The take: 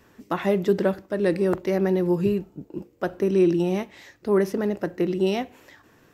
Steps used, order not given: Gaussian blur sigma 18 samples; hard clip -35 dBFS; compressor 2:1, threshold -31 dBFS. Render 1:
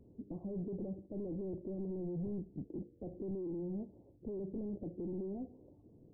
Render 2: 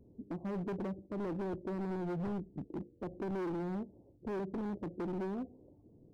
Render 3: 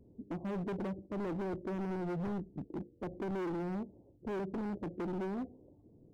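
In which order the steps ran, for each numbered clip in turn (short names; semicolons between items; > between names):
compressor > hard clip > Gaussian blur; compressor > Gaussian blur > hard clip; Gaussian blur > compressor > hard clip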